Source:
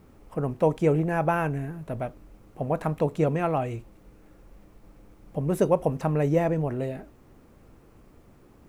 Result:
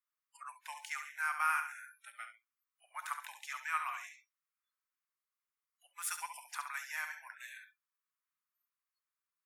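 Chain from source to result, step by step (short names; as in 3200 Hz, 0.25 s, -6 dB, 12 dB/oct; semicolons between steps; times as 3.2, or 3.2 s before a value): speed mistake 48 kHz file played as 44.1 kHz; steep high-pass 1100 Hz 48 dB/oct; on a send: flutter echo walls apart 11.8 m, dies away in 0.53 s; on the sum: spectral noise reduction 30 dB; high shelf 11000 Hz +11.5 dB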